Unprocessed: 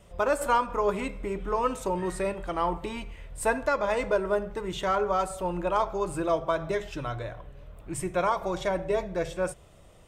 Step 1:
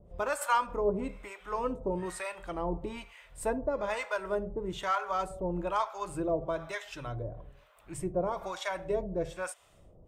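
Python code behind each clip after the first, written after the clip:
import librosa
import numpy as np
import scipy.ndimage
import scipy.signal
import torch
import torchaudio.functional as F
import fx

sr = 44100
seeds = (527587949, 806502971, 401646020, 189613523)

y = fx.harmonic_tremolo(x, sr, hz=1.1, depth_pct=100, crossover_hz=710.0)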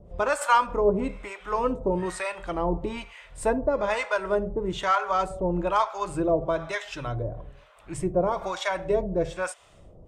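y = scipy.signal.sosfilt(scipy.signal.butter(2, 8300.0, 'lowpass', fs=sr, output='sos'), x)
y = y * librosa.db_to_amplitude(7.0)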